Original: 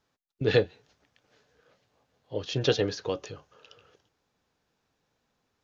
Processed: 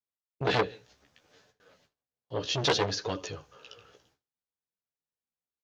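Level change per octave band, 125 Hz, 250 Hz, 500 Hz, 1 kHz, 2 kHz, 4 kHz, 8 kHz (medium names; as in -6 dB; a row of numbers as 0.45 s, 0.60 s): -3.5 dB, -3.0 dB, -4.0 dB, +9.0 dB, +1.5 dB, +3.0 dB, no reading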